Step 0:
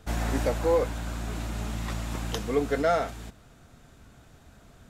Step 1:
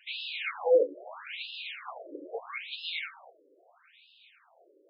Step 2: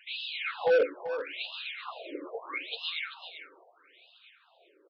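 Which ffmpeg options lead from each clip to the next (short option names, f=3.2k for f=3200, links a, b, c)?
-af "flanger=delay=5.2:depth=6.2:regen=-47:speed=0.63:shape=sinusoidal,superequalizer=12b=2.82:13b=2.51,afftfilt=real='re*between(b*sr/1024,400*pow(3700/400,0.5+0.5*sin(2*PI*0.77*pts/sr))/1.41,400*pow(3700/400,0.5+0.5*sin(2*PI*0.77*pts/sr))*1.41)':imag='im*between(b*sr/1024,400*pow(3700/400,0.5+0.5*sin(2*PI*0.77*pts/sr))/1.41,400*pow(3700/400,0.5+0.5*sin(2*PI*0.77*pts/sr))*1.41)':win_size=1024:overlap=0.75,volume=6dB"
-af "aphaser=in_gain=1:out_gain=1:delay=1:decay=0.34:speed=1.4:type=sinusoidal,aresample=11025,asoftclip=type=hard:threshold=-19.5dB,aresample=44100,aecho=1:1:387:0.282"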